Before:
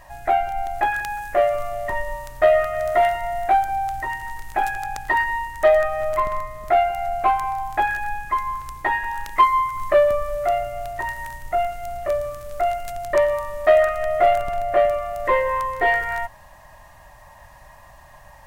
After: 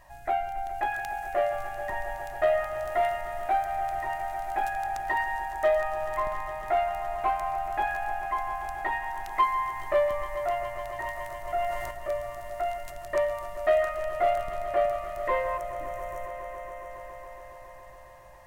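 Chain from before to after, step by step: 15.57–16.90 s: spectral selection erased 330–5400 Hz; echo with a slow build-up 139 ms, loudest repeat 5, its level -15.5 dB; 11.37–11.91 s: decay stretcher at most 28 dB/s; trim -8.5 dB

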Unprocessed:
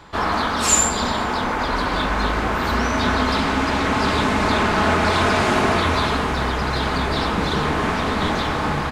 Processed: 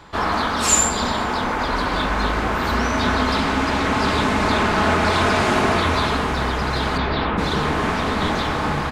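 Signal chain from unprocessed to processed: 6.97–7.37 s: low-pass 5.6 kHz -> 2.8 kHz 24 dB/octave

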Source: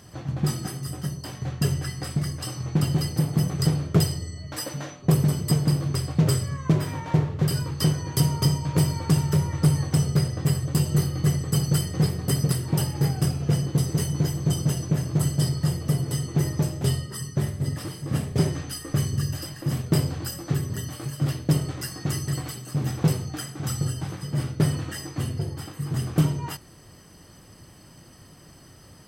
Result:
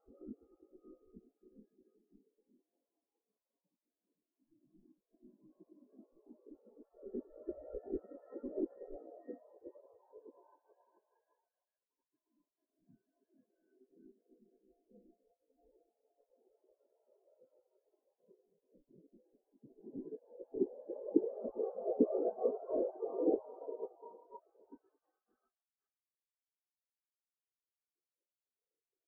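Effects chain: pitch shift switched off and on -10.5 st, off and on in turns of 421 ms; wind noise 210 Hz -32 dBFS; Paulstretch 9.2×, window 0.50 s, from 23.76 s; doubling 16 ms -13 dB; spectral gate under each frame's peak -15 dB weak; steep low-pass 1.9 kHz; spectral contrast expander 4:1; trim +3.5 dB

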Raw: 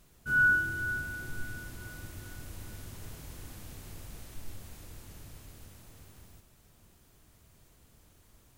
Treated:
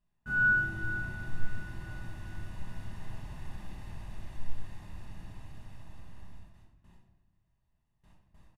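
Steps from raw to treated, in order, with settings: gate with hold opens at -49 dBFS; low-pass 12 kHz 24 dB/octave; tone controls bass -2 dB, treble -14 dB; comb 1.1 ms, depth 56%; simulated room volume 520 m³, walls mixed, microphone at 1.3 m; trim -2 dB

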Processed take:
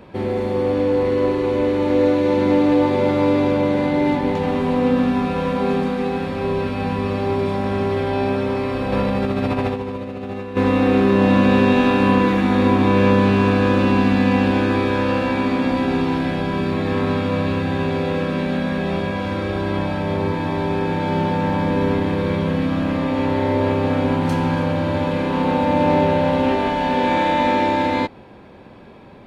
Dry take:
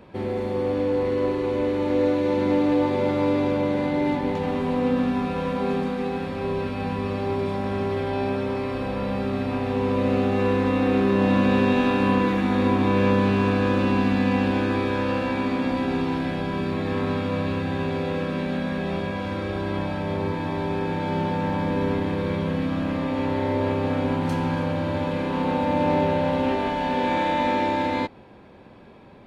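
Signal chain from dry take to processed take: 8.92–10.57 s: compressor with a negative ratio -27 dBFS, ratio -0.5; trim +5 dB

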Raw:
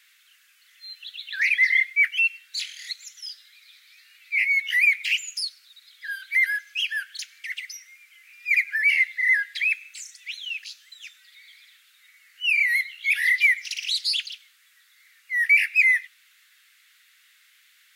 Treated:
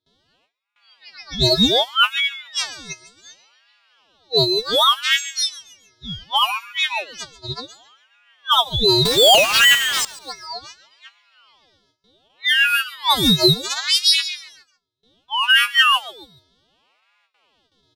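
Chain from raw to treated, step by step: partials quantised in pitch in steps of 2 st; band-stop 2.7 kHz, Q 21; gate with hold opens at -40 dBFS; level-controlled noise filter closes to 1.3 kHz, open at -15 dBFS; 9.05–10.05 s: power-law waveshaper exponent 0.35; on a send: feedback delay 140 ms, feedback 38%, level -17.5 dB; on the sum: ring modulator with a swept carrier 1.2 kHz, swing 55%, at 0.67 Hz; trim +4.5 dB

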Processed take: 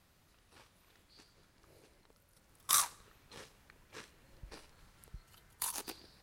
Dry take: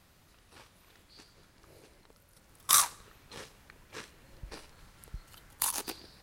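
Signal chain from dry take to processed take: 5.08–5.75 s: comb of notches 280 Hz; trim -6 dB

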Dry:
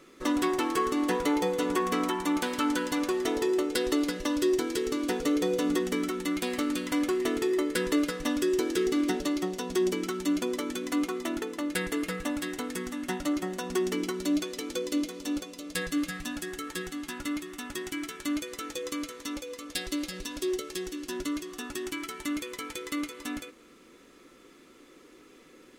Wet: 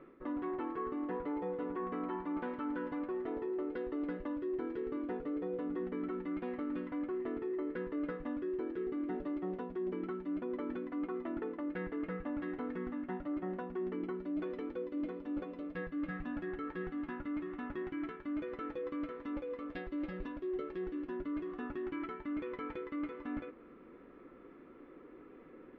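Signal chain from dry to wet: Bessel low-pass 1.3 kHz, order 4; reverse; compression, threshold -37 dBFS, peak gain reduction 14 dB; reverse; trim +1 dB

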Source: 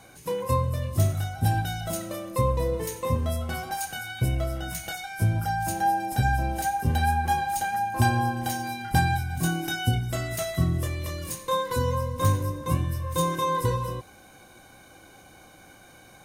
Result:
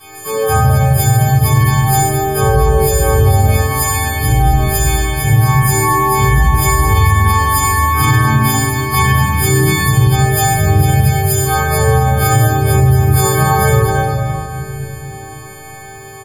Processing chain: partials quantised in pitch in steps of 6 st; bass shelf 87 Hz +10 dB; harmonic-percussive split percussive -15 dB; harmony voices +4 st -2 dB; feedback comb 130 Hz, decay 1 s, harmonics all, mix 80%; early reflections 13 ms -13 dB, 54 ms -9 dB; reverberation RT60 3.0 s, pre-delay 3 ms, DRR -12.5 dB; loudness maximiser +8.5 dB; trim -1 dB

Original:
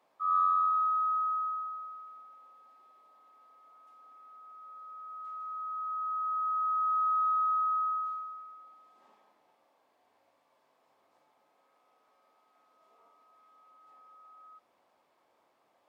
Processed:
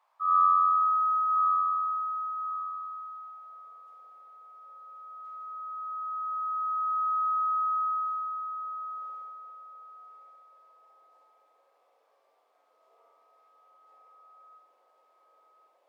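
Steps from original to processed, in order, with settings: thinning echo 1083 ms, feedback 33%, high-pass 1.1 kHz, level -6 dB; high-pass sweep 980 Hz -> 480 Hz, 3.14–3.66 s; flutter echo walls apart 11.8 m, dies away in 0.53 s; trim -3.5 dB

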